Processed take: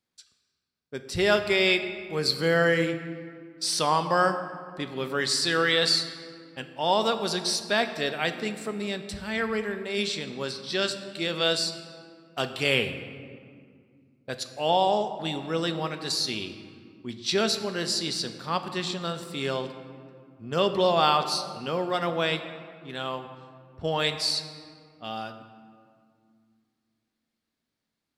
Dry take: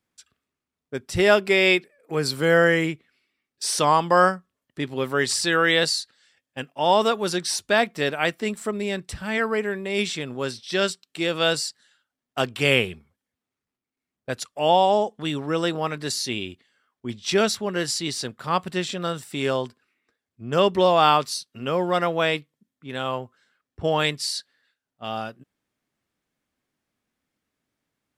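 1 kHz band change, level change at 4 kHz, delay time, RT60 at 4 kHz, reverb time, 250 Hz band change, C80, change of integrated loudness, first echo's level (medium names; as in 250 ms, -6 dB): -4.5 dB, 0.0 dB, no echo, 1.2 s, 2.2 s, -4.0 dB, 11.0 dB, -3.5 dB, no echo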